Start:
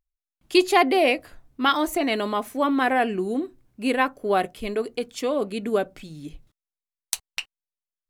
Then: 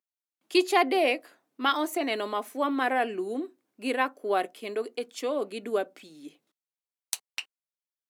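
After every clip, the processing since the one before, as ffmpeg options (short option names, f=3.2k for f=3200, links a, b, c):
-af "highpass=f=260:w=0.5412,highpass=f=260:w=1.3066,volume=-4.5dB"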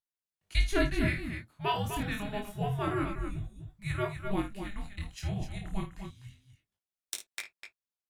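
-af "aecho=1:1:52.48|250.7:0.316|0.398,afreqshift=-410,flanger=delay=19:depth=7.6:speed=0.27,volume=-2.5dB"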